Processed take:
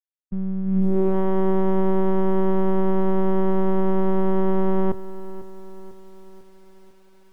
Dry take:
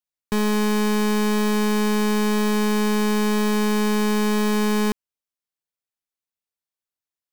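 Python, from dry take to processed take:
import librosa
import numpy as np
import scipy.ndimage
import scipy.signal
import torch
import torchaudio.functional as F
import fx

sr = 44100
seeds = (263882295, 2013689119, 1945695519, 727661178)

y = fx.filter_sweep_lowpass(x, sr, from_hz=130.0, to_hz=800.0, start_s=0.63, end_s=1.17, q=1.4)
y = fx.backlash(y, sr, play_db=-37.5)
y = fx.lpc_monotone(y, sr, seeds[0], pitch_hz=190.0, order=8)
y = fx.echo_crushed(y, sr, ms=497, feedback_pct=55, bits=8, wet_db=-15.0)
y = y * 10.0 ** (1.5 / 20.0)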